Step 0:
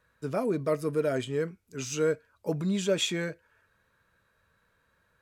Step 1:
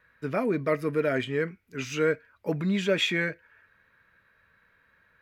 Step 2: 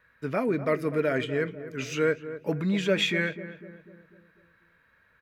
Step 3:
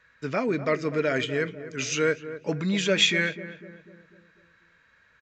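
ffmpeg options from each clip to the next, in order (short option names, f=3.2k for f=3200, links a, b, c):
-af "equalizer=f=250:t=o:w=1:g=3,equalizer=f=2k:t=o:w=1:g=12,equalizer=f=8k:t=o:w=1:g=-10"
-filter_complex "[0:a]asplit=2[a][b];[b]adelay=248,lowpass=f=1.2k:p=1,volume=-12dB,asplit=2[c][d];[d]adelay=248,lowpass=f=1.2k:p=1,volume=0.53,asplit=2[e][f];[f]adelay=248,lowpass=f=1.2k:p=1,volume=0.53,asplit=2[g][h];[h]adelay=248,lowpass=f=1.2k:p=1,volume=0.53,asplit=2[i][j];[j]adelay=248,lowpass=f=1.2k:p=1,volume=0.53,asplit=2[k][l];[l]adelay=248,lowpass=f=1.2k:p=1,volume=0.53[m];[a][c][e][g][i][k][m]amix=inputs=7:normalize=0"
-af "crystalizer=i=3.5:c=0,aresample=16000,aresample=44100"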